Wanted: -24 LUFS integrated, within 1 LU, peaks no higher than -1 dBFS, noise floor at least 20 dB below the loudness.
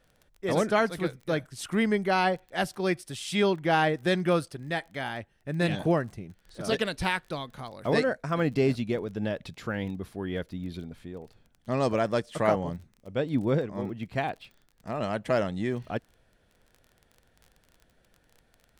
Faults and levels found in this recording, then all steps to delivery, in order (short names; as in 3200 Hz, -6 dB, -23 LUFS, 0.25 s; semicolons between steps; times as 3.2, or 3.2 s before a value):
ticks 22/s; loudness -29.0 LUFS; peak -9.5 dBFS; loudness target -24.0 LUFS
-> de-click; gain +5 dB